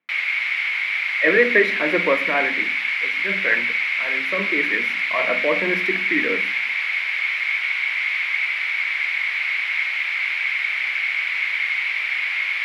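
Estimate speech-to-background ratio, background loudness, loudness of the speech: −2.0 dB, −20.5 LKFS, −22.5 LKFS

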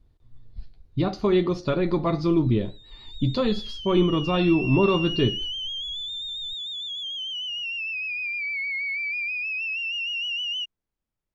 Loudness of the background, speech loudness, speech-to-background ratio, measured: −28.0 LKFS, −23.5 LKFS, 4.5 dB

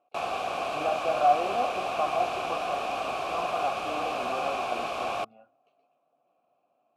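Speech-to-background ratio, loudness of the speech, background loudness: −1.0 dB, −32.0 LKFS, −31.0 LKFS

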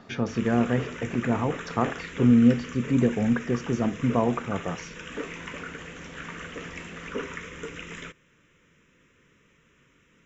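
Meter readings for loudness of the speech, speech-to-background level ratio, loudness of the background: −25.0 LKFS, 13.0 dB, −38.0 LKFS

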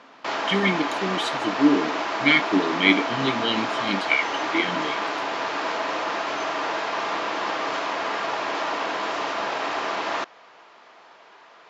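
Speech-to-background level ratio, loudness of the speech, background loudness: 3.0 dB, −23.5 LKFS, −26.5 LKFS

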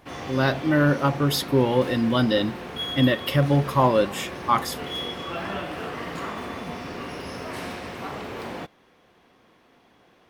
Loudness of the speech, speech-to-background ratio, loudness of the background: −22.5 LKFS, 11.0 dB, −33.5 LKFS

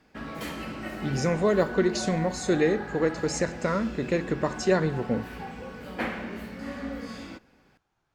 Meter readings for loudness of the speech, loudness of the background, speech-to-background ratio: −27.0 LKFS, −37.0 LKFS, 10.0 dB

